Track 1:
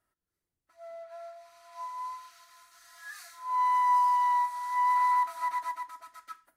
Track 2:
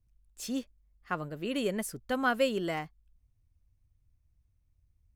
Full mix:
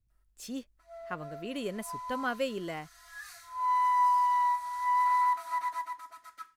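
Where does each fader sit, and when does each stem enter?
−1.0, −4.5 decibels; 0.10, 0.00 seconds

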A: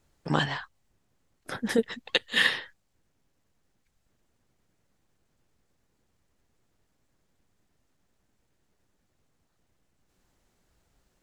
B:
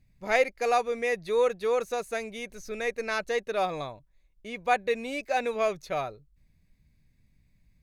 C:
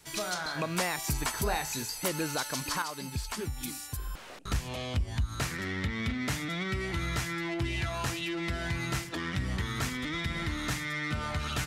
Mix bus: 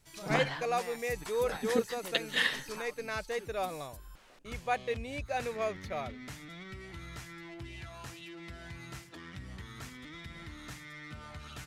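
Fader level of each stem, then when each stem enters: −6.0, −7.0, −13.0 decibels; 0.00, 0.00, 0.00 seconds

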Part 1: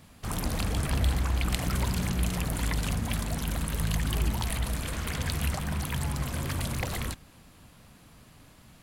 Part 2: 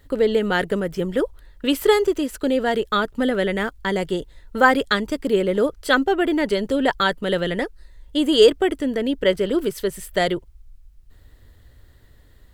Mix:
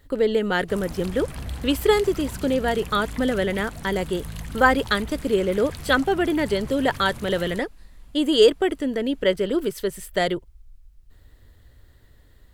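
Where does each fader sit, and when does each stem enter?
−6.5, −2.0 decibels; 0.45, 0.00 seconds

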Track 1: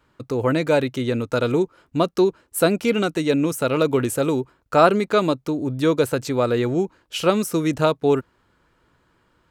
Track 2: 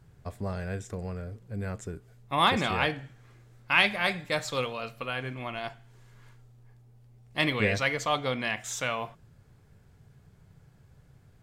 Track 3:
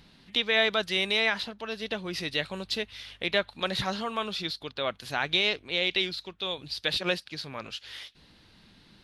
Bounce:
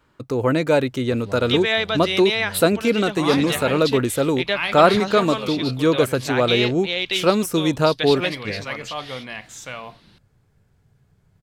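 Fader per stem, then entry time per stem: +1.0, −3.0, +3.0 decibels; 0.00, 0.85, 1.15 seconds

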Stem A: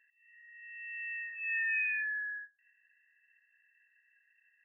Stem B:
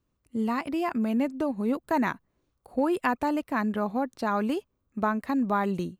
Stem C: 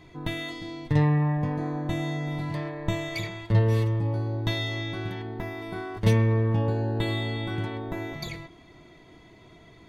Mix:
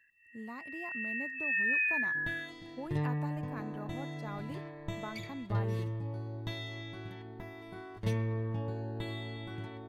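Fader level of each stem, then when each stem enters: +2.5, −17.0, −11.5 decibels; 0.00, 0.00, 2.00 seconds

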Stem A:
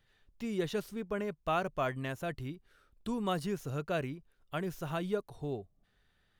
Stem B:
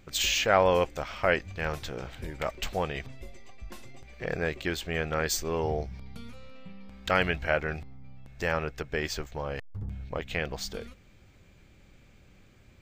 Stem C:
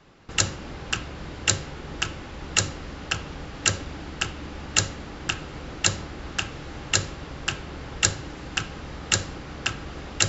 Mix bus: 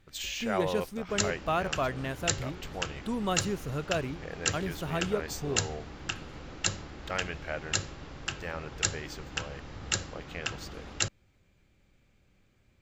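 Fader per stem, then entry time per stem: +2.5, −9.5, −7.5 decibels; 0.00, 0.00, 0.80 seconds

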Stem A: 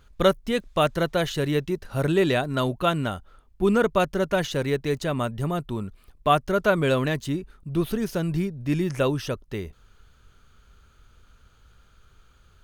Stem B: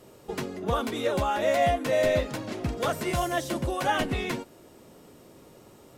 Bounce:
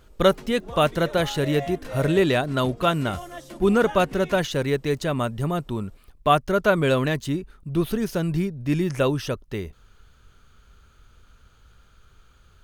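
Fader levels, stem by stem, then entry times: +1.5, −10.5 decibels; 0.00, 0.00 seconds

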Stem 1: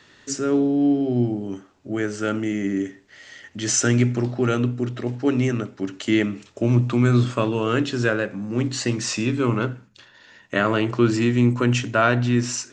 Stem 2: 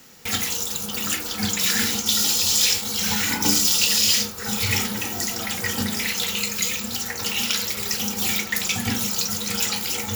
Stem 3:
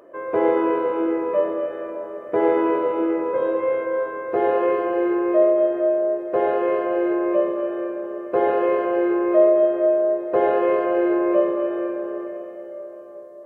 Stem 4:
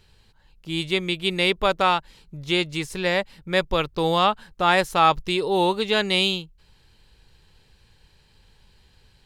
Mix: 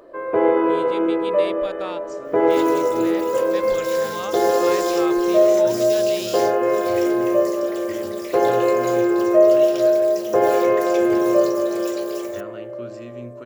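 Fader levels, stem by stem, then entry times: −19.5, −15.0, +2.0, −14.0 decibels; 1.80, 2.25, 0.00, 0.00 seconds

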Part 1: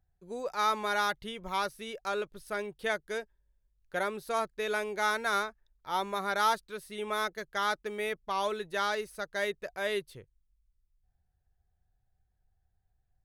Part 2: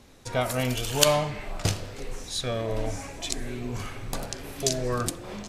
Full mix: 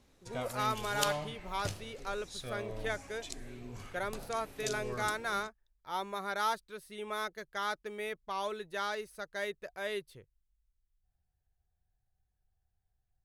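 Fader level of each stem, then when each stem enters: −5.0, −13.0 decibels; 0.00, 0.00 seconds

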